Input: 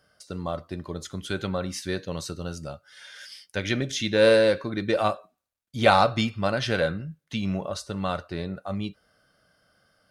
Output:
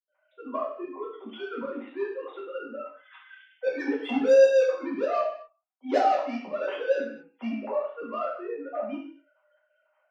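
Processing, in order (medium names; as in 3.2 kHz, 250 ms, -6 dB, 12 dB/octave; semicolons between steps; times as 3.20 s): formants replaced by sine waves; 2.53–4.73 s: comb 4 ms, depth 95%; saturation -26 dBFS, distortion -1 dB; rippled Chebyshev high-pass 220 Hz, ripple 3 dB; tremolo saw up 3.9 Hz, depth 75%; reverberation RT60 0.55 s, pre-delay 77 ms, DRR -60 dB; trim +3.5 dB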